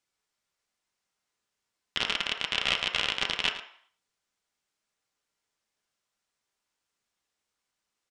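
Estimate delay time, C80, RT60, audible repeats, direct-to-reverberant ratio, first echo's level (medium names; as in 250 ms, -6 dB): 109 ms, 10.0 dB, 0.60 s, 1, 2.5 dB, -13.0 dB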